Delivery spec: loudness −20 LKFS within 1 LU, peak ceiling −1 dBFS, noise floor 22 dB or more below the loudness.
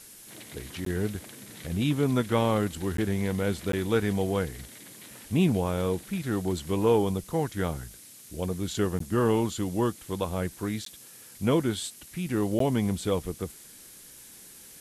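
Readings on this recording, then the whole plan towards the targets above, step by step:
number of dropouts 6; longest dropout 13 ms; background noise floor −49 dBFS; target noise floor −51 dBFS; integrated loudness −28.5 LKFS; sample peak −12.0 dBFS; target loudness −20.0 LKFS
→ repair the gap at 0:00.85/0:02.97/0:03.72/0:08.99/0:10.85/0:12.59, 13 ms
noise reduction from a noise print 6 dB
level +8.5 dB

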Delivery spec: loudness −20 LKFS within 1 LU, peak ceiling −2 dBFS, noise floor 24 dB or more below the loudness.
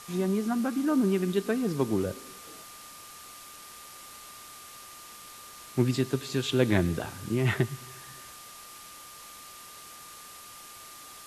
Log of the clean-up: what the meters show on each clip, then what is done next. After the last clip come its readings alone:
interfering tone 1,200 Hz; level of the tone −50 dBFS; background noise floor −47 dBFS; target noise floor −53 dBFS; integrated loudness −28.5 LKFS; sample peak −9.5 dBFS; target loudness −20.0 LKFS
→ notch filter 1,200 Hz, Q 30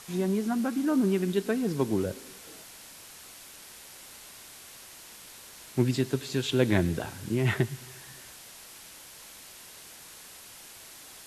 interfering tone none found; background noise floor −49 dBFS; target noise floor −53 dBFS
→ broadband denoise 6 dB, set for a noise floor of −49 dBFS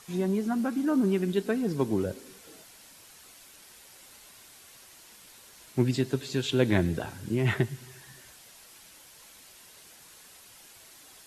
background noise floor −53 dBFS; integrated loudness −28.5 LKFS; sample peak −9.5 dBFS; target loudness −20.0 LKFS
→ level +8.5 dB
brickwall limiter −2 dBFS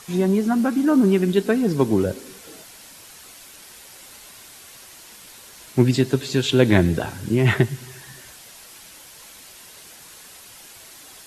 integrated loudness −20.0 LKFS; sample peak −2.0 dBFS; background noise floor −45 dBFS

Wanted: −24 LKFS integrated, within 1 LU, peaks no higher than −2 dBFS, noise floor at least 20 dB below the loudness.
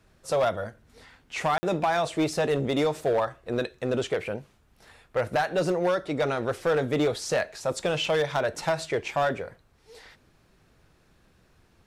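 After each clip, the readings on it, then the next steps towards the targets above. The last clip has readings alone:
share of clipped samples 1.2%; peaks flattened at −18.5 dBFS; number of dropouts 1; longest dropout 50 ms; integrated loudness −27.0 LKFS; sample peak −18.5 dBFS; target loudness −24.0 LKFS
→ clipped peaks rebuilt −18.5 dBFS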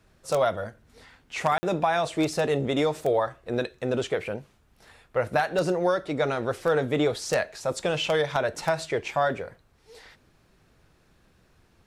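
share of clipped samples 0.0%; number of dropouts 1; longest dropout 50 ms
→ repair the gap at 0:01.58, 50 ms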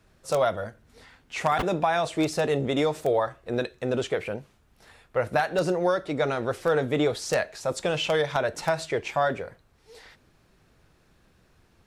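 number of dropouts 0; integrated loudness −26.5 LKFS; sample peak −9.5 dBFS; target loudness −24.0 LKFS
→ level +2.5 dB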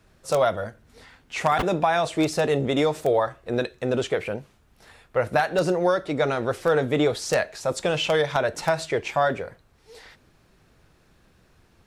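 integrated loudness −24.0 LKFS; sample peak −7.0 dBFS; background noise floor −60 dBFS

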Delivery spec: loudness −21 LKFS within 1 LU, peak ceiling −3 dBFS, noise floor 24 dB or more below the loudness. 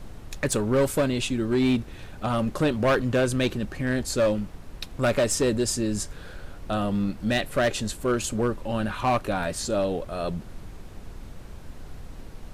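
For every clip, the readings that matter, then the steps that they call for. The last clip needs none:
share of clipped samples 1.4%; peaks flattened at −17.0 dBFS; background noise floor −42 dBFS; target noise floor −50 dBFS; integrated loudness −26.0 LKFS; sample peak −17.0 dBFS; target loudness −21.0 LKFS
→ clipped peaks rebuilt −17 dBFS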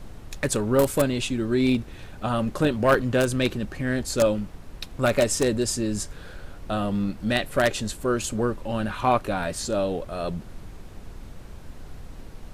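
share of clipped samples 0.0%; background noise floor −42 dBFS; target noise floor −49 dBFS
→ noise reduction from a noise print 7 dB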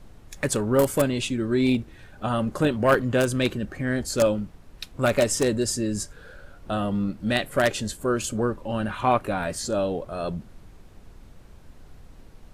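background noise floor −49 dBFS; integrated loudness −25.0 LKFS; sample peak −8.0 dBFS; target loudness −21.0 LKFS
→ level +4 dB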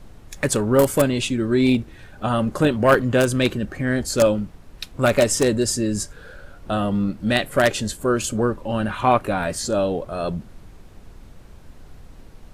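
integrated loudness −21.0 LKFS; sample peak −4.0 dBFS; background noise floor −45 dBFS

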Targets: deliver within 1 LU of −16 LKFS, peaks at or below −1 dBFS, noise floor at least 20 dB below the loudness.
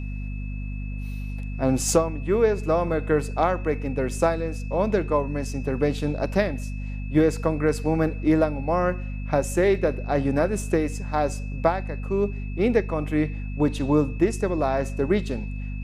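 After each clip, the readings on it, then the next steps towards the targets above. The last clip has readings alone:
mains hum 50 Hz; hum harmonics up to 250 Hz; level of the hum −28 dBFS; interfering tone 2,600 Hz; level of the tone −45 dBFS; integrated loudness −24.5 LKFS; sample peak −5.5 dBFS; target loudness −16.0 LKFS
→ mains-hum notches 50/100/150/200/250 Hz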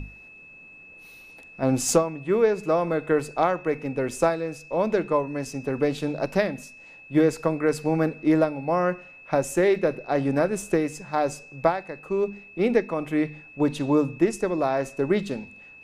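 mains hum none found; interfering tone 2,600 Hz; level of the tone −45 dBFS
→ notch filter 2,600 Hz, Q 30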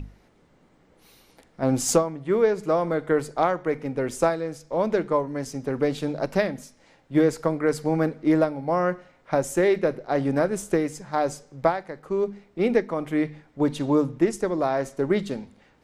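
interfering tone none found; integrated loudness −25.0 LKFS; sample peak −5.5 dBFS; target loudness −16.0 LKFS
→ level +9 dB
brickwall limiter −1 dBFS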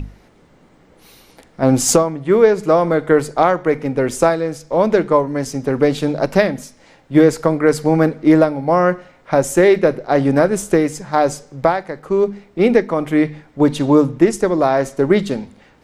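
integrated loudness −16.0 LKFS; sample peak −1.0 dBFS; background noise floor −51 dBFS

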